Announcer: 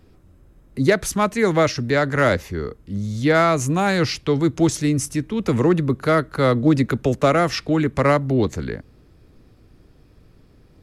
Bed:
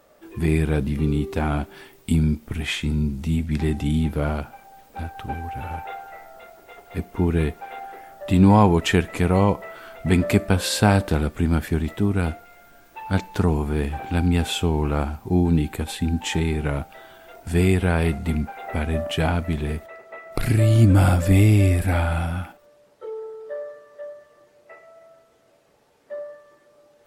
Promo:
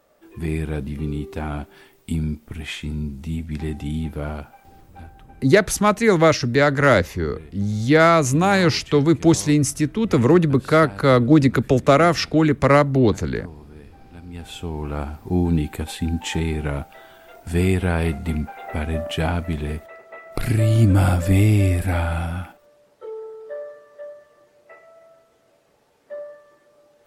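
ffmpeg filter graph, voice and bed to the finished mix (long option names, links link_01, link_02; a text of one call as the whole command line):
ffmpeg -i stem1.wav -i stem2.wav -filter_complex "[0:a]adelay=4650,volume=2.5dB[link_01];[1:a]volume=15dB,afade=type=out:start_time=4.68:duration=0.63:silence=0.16788,afade=type=in:start_time=14.26:duration=1.16:silence=0.105925[link_02];[link_01][link_02]amix=inputs=2:normalize=0" out.wav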